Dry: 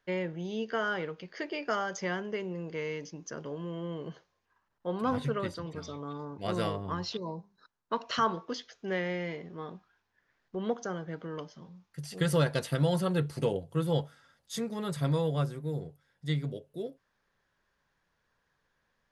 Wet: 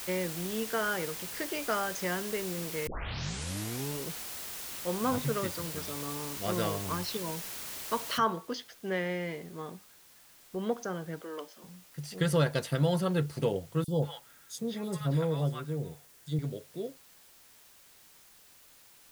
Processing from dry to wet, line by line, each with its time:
2.87 tape start 1.20 s
8.18 noise floor step -41 dB -58 dB
11.21–11.64 HPF 290 Hz 24 dB/oct
13.84–16.39 three bands offset in time highs, lows, mids 40/180 ms, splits 910/4000 Hz

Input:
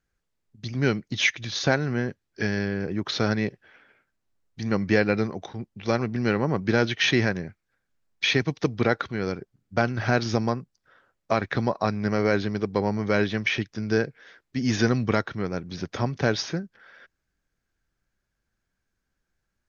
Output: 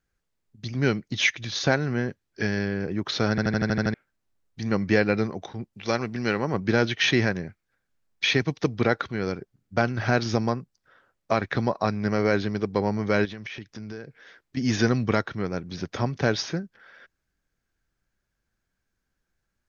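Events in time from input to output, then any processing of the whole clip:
3.3 stutter in place 0.08 s, 8 plays
5.73–6.54 tilt +1.5 dB/oct
13.25–14.57 compressor, threshold -34 dBFS

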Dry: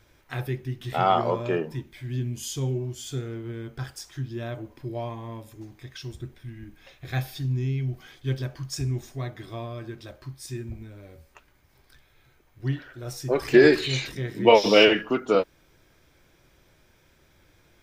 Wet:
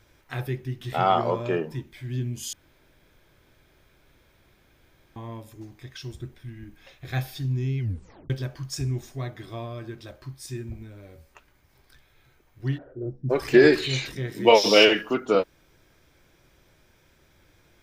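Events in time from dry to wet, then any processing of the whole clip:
2.53–5.16 room tone
7.79 tape stop 0.51 s
12.77–13.29 synth low-pass 760 Hz -> 190 Hz, resonance Q 3.9
14.32–15.14 tone controls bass -4 dB, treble +8 dB

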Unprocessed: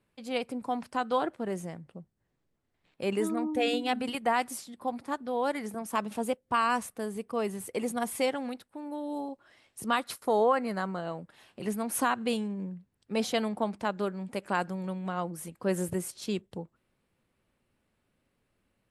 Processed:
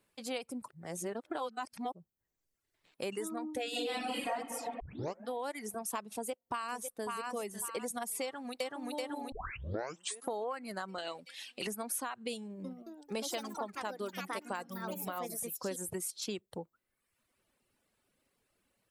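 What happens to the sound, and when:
0.68–1.92 reverse
3.7–4.3 reverb throw, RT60 2 s, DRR -11 dB
4.8 tape start 0.49 s
6.13–7.1 echo throw 0.55 s, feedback 35%, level -7.5 dB
8.22–8.77 echo throw 0.38 s, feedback 60%, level 0 dB
9.32 tape start 0.98 s
10.98–11.67 weighting filter D
12.42–16.35 echoes that change speed 0.222 s, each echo +4 st, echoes 3, each echo -6 dB
whole clip: reverb removal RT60 0.91 s; tone controls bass -7 dB, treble +7 dB; compressor 6:1, threshold -36 dBFS; gain +1 dB

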